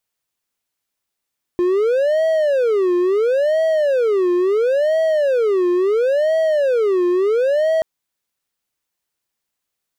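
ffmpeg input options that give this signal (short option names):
-f lavfi -i "aevalsrc='0.266*(1-4*abs(mod((498.5*t-145.5/(2*PI*0.73)*sin(2*PI*0.73*t))+0.25,1)-0.5))':d=6.23:s=44100"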